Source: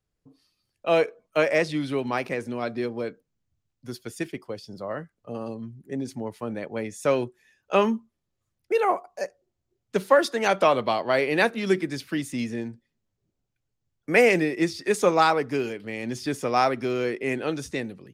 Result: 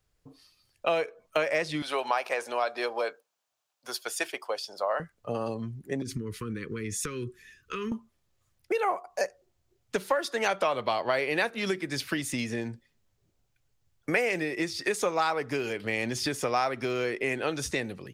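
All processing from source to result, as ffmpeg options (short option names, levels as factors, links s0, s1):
-filter_complex "[0:a]asettb=1/sr,asplit=3[s0][s1][s2];[s0]atrim=end=1.824[s3];[s1]atrim=start=1.82:end=5,asetpts=PTS-STARTPTS,afade=t=in:d=0.004:c=qsin,afade=t=out:st=3.176:d=0.004:c=qsin,highpass=f=700:t=q:w=1.5,equalizer=f=2000:t=o:w=0.3:g=-5.5[s4];[s2]atrim=start=4.996[s5];[s3][s4]acrossfade=d=0.004:c1=hsin:c2=qsin[s6];[s6][s5]acrossfade=d=0.004:c1=qsin:c2=hsin,asettb=1/sr,asplit=3[s7][s8][s9];[s7]atrim=end=6.024[s10];[s8]atrim=start=6.02:end=7.92,asetpts=PTS-STARTPTS,afade=t=in:d=0.004:c=qsin,afade=t=out:st=1.896:d=0.004:c=qsin,acompressor=threshold=0.0158:ratio=8:attack=3.2:release=140:knee=1:detection=peak,asuperstop=centerf=710:order=8:qfactor=1.1,lowshelf=f=310:g=9[s11];[s9]atrim=start=7.916[s12];[s10][s11]acrossfade=d=0.004:c1=hsin:c2=qsin[s13];[s13][s12]acrossfade=d=0.004:c1=qsin:c2=hsin,acompressor=threshold=0.0282:ratio=6,equalizer=f=230:t=o:w=1.9:g=-7.5,volume=2.66"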